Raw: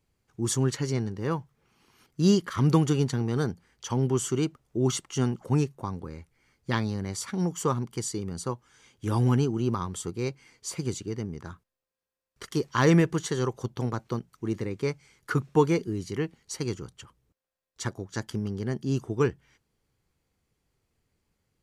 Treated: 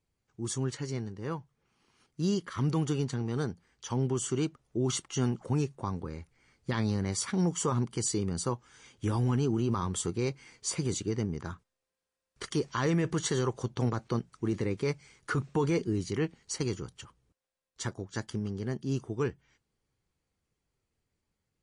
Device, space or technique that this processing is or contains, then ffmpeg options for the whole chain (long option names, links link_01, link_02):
low-bitrate web radio: -af "dynaudnorm=framelen=580:gausssize=17:maxgain=16.5dB,alimiter=limit=-13dB:level=0:latency=1:release=28,volume=-6.5dB" -ar 24000 -c:a libmp3lame -b:a 40k